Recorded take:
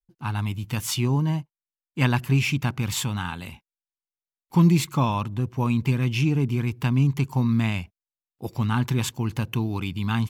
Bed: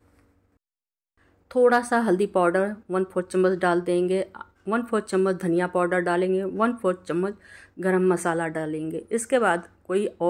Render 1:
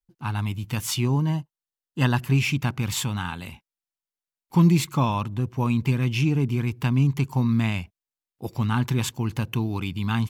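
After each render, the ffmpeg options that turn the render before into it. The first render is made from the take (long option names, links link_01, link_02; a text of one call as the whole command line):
ffmpeg -i in.wav -filter_complex "[0:a]asettb=1/sr,asplit=3[link_01][link_02][link_03];[link_01]atrim=end=1.334[link_04];[link_02]atrim=start=1.33:end=2.18,asetpts=PTS-STARTPTS,afade=type=in:duration=0.004:curve=qsin,afade=type=out:start_time=0.846:duration=0.004:curve=qsin,asuperstop=centerf=2300:order=4:qfactor=4.4[link_05];[link_03]atrim=start=2.176[link_06];[link_04][link_05]acrossfade=duration=0.004:curve1=hsin:curve2=qsin[link_07];[link_07][link_06]acrossfade=duration=0.004:curve1=qsin:curve2=hsin" out.wav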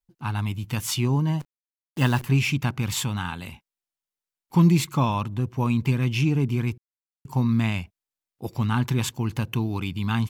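ffmpeg -i in.wav -filter_complex "[0:a]asettb=1/sr,asplit=3[link_01][link_02][link_03];[link_01]atrim=end=1.404[link_04];[link_02]atrim=start=1.4:end=2.25,asetpts=PTS-STARTPTS,afade=type=in:duration=0.004:curve=qsin,afade=type=out:start_time=0.846:duration=0.004:curve=qsin,acrusher=bits=7:dc=4:mix=0:aa=0.000001[link_05];[link_03]atrim=start=2.246[link_06];[link_04][link_05]acrossfade=duration=0.004:curve1=hsin:curve2=qsin[link_07];[link_07][link_06]acrossfade=duration=0.004:curve1=qsin:curve2=hsin,asplit=3[link_08][link_09][link_10];[link_08]atrim=end=6.78,asetpts=PTS-STARTPTS,afade=type=out:start_time=6.776:duration=0.004:curve=hsin[link_11];[link_09]atrim=start=6.78:end=7.25,asetpts=PTS-STARTPTS,volume=0[link_12];[link_10]atrim=start=7.25,asetpts=PTS-STARTPTS,afade=type=in:duration=0.004:curve=hsin[link_13];[link_11][link_12][link_13]concat=n=3:v=0:a=1" out.wav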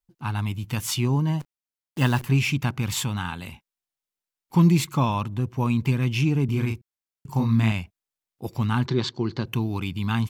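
ffmpeg -i in.wav -filter_complex "[0:a]asettb=1/sr,asplit=3[link_01][link_02][link_03];[link_01]atrim=end=6.454[link_04];[link_02]atrim=start=6.45:end=7.72,asetpts=PTS-STARTPTS,afade=type=in:duration=0.004:curve=qsin,afade=type=out:start_time=1.266:duration=0.004:curve=qsin,asplit=2[link_05][link_06];[link_06]adelay=36,volume=-4.5dB[link_07];[link_05][link_07]amix=inputs=2:normalize=0,atrim=end_sample=56007[link_08];[link_03]atrim=start=7.716[link_09];[link_04][link_08]acrossfade=duration=0.004:curve1=hsin:curve2=qsin[link_10];[link_10][link_09]acrossfade=duration=0.004:curve1=qsin:curve2=hsin,asettb=1/sr,asplit=3[link_11][link_12][link_13];[link_11]atrim=end=8.864[link_14];[link_12]atrim=start=8.86:end=9.46,asetpts=PTS-STARTPTS,afade=type=in:duration=0.004:curve=qsin,afade=type=out:start_time=0.596:duration=0.004:curve=qsin,highpass=120,equalizer=frequency=370:width_type=q:width=4:gain=10,equalizer=frequency=870:width_type=q:width=4:gain=-3,equalizer=frequency=2600:width_type=q:width=4:gain=-9,equalizer=frequency=4300:width_type=q:width=4:gain=10,lowpass=frequency=5200:width=0.5412,lowpass=frequency=5200:width=1.3066[link_15];[link_13]atrim=start=9.456[link_16];[link_14][link_15]acrossfade=duration=0.004:curve1=hsin:curve2=qsin[link_17];[link_17][link_16]acrossfade=duration=0.004:curve1=qsin:curve2=hsin" out.wav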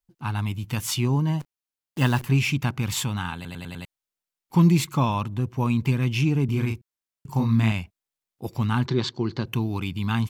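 ffmpeg -i in.wav -filter_complex "[0:a]asplit=6[link_01][link_02][link_03][link_04][link_05][link_06];[link_01]atrim=end=3.452[link_07];[link_02]atrim=start=3.348:end=3.452[link_08];[link_03]atrim=start=3.348:end=3.452[link_09];[link_04]atrim=start=3.348:end=3.452[link_10];[link_05]atrim=start=3.348:end=3.452[link_11];[link_06]atrim=start=3.848[link_12];[link_07][link_08]acrossfade=duration=0.004:curve1=hsin:curve2=hsin[link_13];[link_13][link_09]acrossfade=duration=0.004:curve1=hsin:curve2=hsin[link_14];[link_14][link_10]acrossfade=duration=0.004:curve1=hsin:curve2=hsin[link_15];[link_15][link_11]acrossfade=duration=0.004:curve1=hsin:curve2=hsin[link_16];[link_16][link_12]acrossfade=duration=0.004:curve1=hsin:curve2=hsin" out.wav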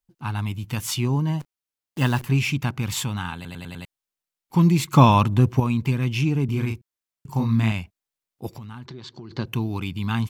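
ffmpeg -i in.wav -filter_complex "[0:a]asplit=3[link_01][link_02][link_03];[link_01]afade=type=out:start_time=8.54:duration=0.02[link_04];[link_02]acompressor=threshold=-35dB:ratio=8:attack=3.2:release=140:knee=1:detection=peak,afade=type=in:start_time=8.54:duration=0.02,afade=type=out:start_time=9.3:duration=0.02[link_05];[link_03]afade=type=in:start_time=9.3:duration=0.02[link_06];[link_04][link_05][link_06]amix=inputs=3:normalize=0,asplit=3[link_07][link_08][link_09];[link_07]atrim=end=4.932[link_10];[link_08]atrim=start=4.928:end=5.602,asetpts=PTS-STARTPTS,volume=9dB[link_11];[link_09]atrim=start=5.598[link_12];[link_10][link_11]acrossfade=duration=0.004:curve1=hsin:curve2=hsin[link_13];[link_13][link_12]acrossfade=duration=0.004:curve1=hsin:curve2=hsin" out.wav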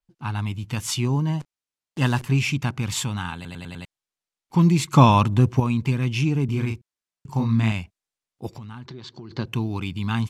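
ffmpeg -i in.wav -af "lowpass=8500,adynamicequalizer=threshold=0.00891:dfrequency=6200:dqfactor=0.7:tfrequency=6200:tqfactor=0.7:attack=5:release=100:ratio=0.375:range=2.5:mode=boostabove:tftype=highshelf" out.wav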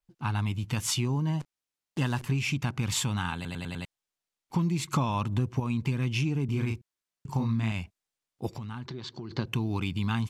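ffmpeg -i in.wav -af "acompressor=threshold=-25dB:ratio=6" out.wav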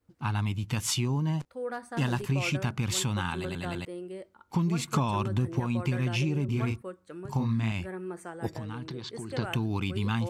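ffmpeg -i in.wav -i bed.wav -filter_complex "[1:a]volume=-17dB[link_01];[0:a][link_01]amix=inputs=2:normalize=0" out.wav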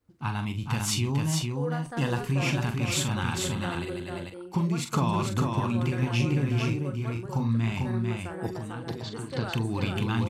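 ffmpeg -i in.wav -filter_complex "[0:a]asplit=2[link_01][link_02];[link_02]adelay=43,volume=-8dB[link_03];[link_01][link_03]amix=inputs=2:normalize=0,asplit=2[link_04][link_05];[link_05]aecho=0:1:447:0.668[link_06];[link_04][link_06]amix=inputs=2:normalize=0" out.wav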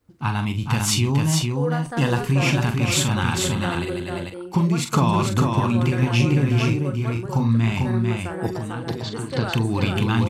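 ffmpeg -i in.wav -af "volume=7dB" out.wav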